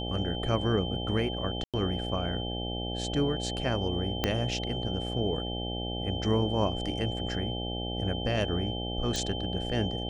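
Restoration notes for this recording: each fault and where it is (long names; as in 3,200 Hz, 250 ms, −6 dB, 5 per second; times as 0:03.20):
mains buzz 60 Hz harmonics 14 −35 dBFS
whistle 3,100 Hz −37 dBFS
0:01.64–0:01.74: drop-out 97 ms
0:04.24: click −11 dBFS
0:09.16: click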